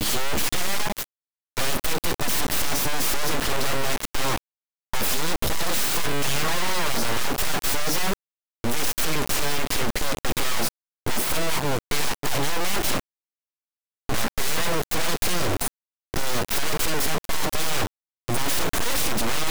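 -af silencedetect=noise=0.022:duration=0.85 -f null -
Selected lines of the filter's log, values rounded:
silence_start: 13.00
silence_end: 14.09 | silence_duration: 1.10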